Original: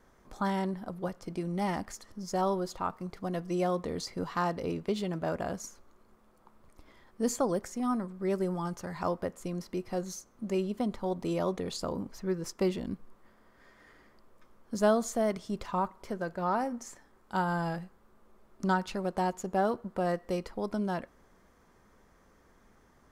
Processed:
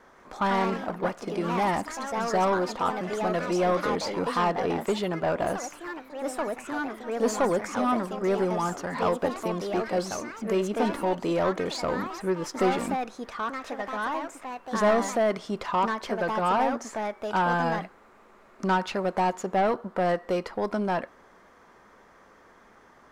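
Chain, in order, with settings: overdrive pedal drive 19 dB, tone 2100 Hz, clips at -14.5 dBFS; echoes that change speed 0.159 s, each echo +3 st, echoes 3, each echo -6 dB

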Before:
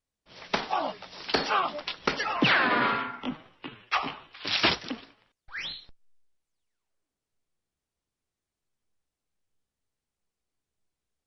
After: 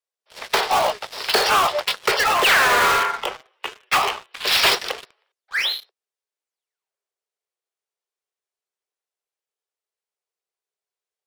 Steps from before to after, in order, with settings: steep high-pass 370 Hz 96 dB/oct; sample leveller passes 3; in parallel at -9 dB: wrapped overs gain 15.5 dB

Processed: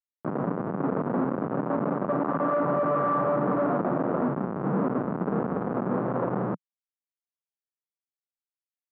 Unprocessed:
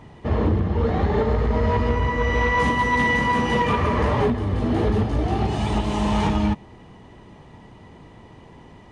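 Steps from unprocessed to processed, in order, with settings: pitch shift -9 st; Schmitt trigger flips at -30 dBFS; Chebyshev band-pass 170–1300 Hz, order 3

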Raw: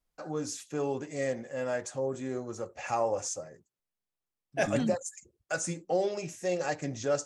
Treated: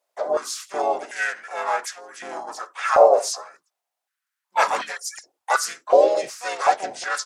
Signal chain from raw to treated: harmoniser -7 st -16 dB, -4 st -1 dB, +5 st -5 dB; stepped high-pass 2.7 Hz 610–1800 Hz; gain +5 dB

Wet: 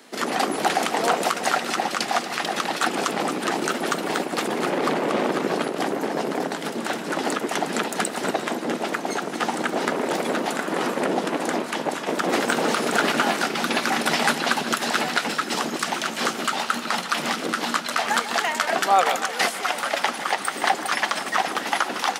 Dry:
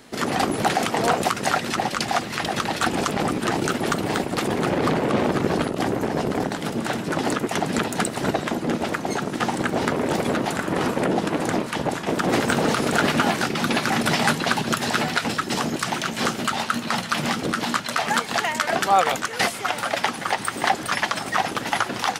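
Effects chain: Bessel high-pass 280 Hz, order 8; split-band echo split 1700 Hz, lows 0.151 s, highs 0.235 s, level -12 dB

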